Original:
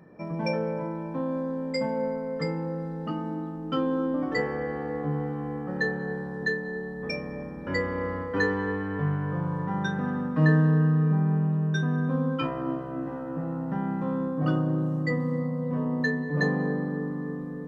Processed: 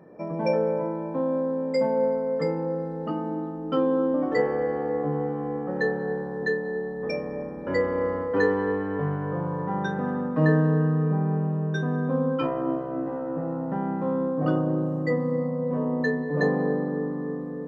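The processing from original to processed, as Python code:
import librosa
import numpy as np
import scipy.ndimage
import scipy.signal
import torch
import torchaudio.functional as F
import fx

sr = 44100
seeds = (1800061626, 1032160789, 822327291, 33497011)

y = fx.peak_eq(x, sr, hz=530.0, db=11.0, octaves=2.3)
y = y * 10.0 ** (-4.5 / 20.0)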